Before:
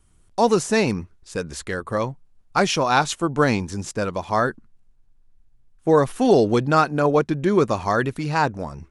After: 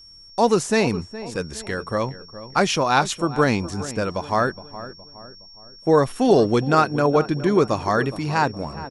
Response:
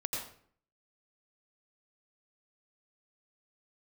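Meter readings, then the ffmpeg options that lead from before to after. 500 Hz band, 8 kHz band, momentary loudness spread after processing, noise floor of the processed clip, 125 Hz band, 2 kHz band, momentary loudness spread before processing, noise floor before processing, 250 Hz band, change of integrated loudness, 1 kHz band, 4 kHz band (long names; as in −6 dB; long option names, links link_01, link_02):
0.0 dB, 0.0 dB, 14 LU, −46 dBFS, 0.0 dB, 0.0 dB, 12 LU, −57 dBFS, 0.0 dB, 0.0 dB, 0.0 dB, +1.0 dB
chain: -filter_complex "[0:a]aeval=exprs='val(0)+0.00631*sin(2*PI*5500*n/s)':channel_layout=same,asplit=2[link_01][link_02];[link_02]adelay=416,lowpass=frequency=1600:poles=1,volume=-14dB,asplit=2[link_03][link_04];[link_04]adelay=416,lowpass=frequency=1600:poles=1,volume=0.46,asplit=2[link_05][link_06];[link_06]adelay=416,lowpass=frequency=1600:poles=1,volume=0.46,asplit=2[link_07][link_08];[link_08]adelay=416,lowpass=frequency=1600:poles=1,volume=0.46[link_09];[link_01][link_03][link_05][link_07][link_09]amix=inputs=5:normalize=0"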